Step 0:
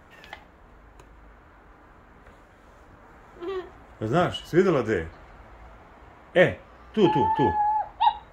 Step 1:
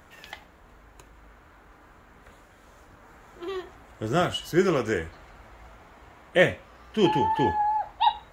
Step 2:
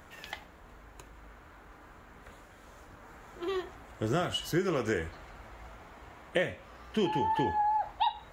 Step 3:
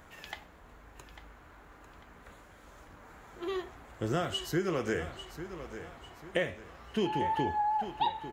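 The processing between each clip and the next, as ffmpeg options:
-af "highshelf=f=3200:g=10,volume=0.794"
-af "acompressor=threshold=0.0562:ratio=12"
-af "aecho=1:1:847|1694|2541|3388:0.251|0.0955|0.0363|0.0138,volume=0.841"

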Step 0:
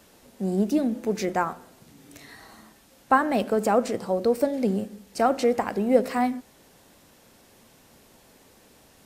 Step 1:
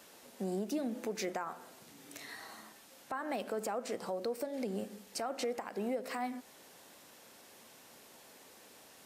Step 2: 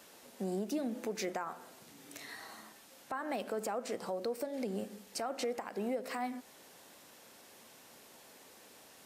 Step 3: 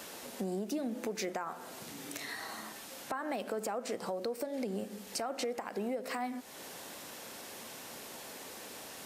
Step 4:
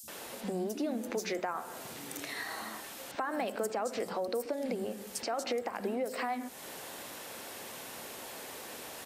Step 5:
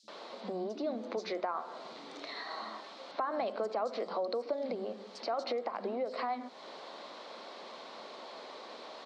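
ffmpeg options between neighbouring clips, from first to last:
-af "highpass=f=470:p=1,acompressor=threshold=0.02:ratio=2,alimiter=level_in=1.41:limit=0.0631:level=0:latency=1:release=164,volume=0.708"
-af anull
-af "acompressor=threshold=0.00224:ratio=2,volume=3.55"
-filter_complex "[0:a]acrossover=split=210|5600[s0][s1][s2];[s0]adelay=30[s3];[s1]adelay=80[s4];[s3][s4][s2]amix=inputs=3:normalize=0,volume=1.41"
-af "highpass=f=210:w=0.5412,highpass=f=210:w=1.3066,equalizer=f=280:t=q:w=4:g=-3,equalizer=f=620:t=q:w=4:g=5,equalizer=f=1100:t=q:w=4:g=6,equalizer=f=1700:t=q:w=4:g=-6,equalizer=f=2700:t=q:w=4:g=-6,equalizer=f=4200:t=q:w=4:g=6,lowpass=f=4500:w=0.5412,lowpass=f=4500:w=1.3066,volume=0.794"

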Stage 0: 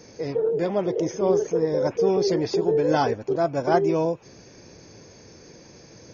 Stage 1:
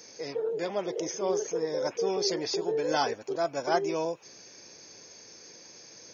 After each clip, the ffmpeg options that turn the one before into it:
-af "highpass=f=540:p=1,highshelf=f=3300:g=10,volume=0.631"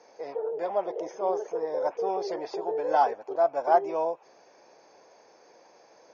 -af "bandpass=f=770:t=q:w=2.3:csg=0,volume=2.51"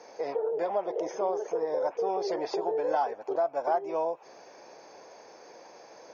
-af "acompressor=threshold=0.02:ratio=3,volume=2"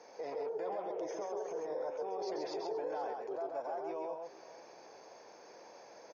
-filter_complex "[0:a]alimiter=level_in=1.5:limit=0.0631:level=0:latency=1:release=11,volume=0.668,asplit=2[s0][s1];[s1]aecho=0:1:133|479:0.631|0.15[s2];[s0][s2]amix=inputs=2:normalize=0,volume=0.501"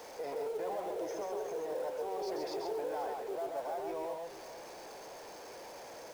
-af "aeval=exprs='val(0)+0.5*0.00422*sgn(val(0))':c=same,acrusher=bits=6:mode=log:mix=0:aa=0.000001"

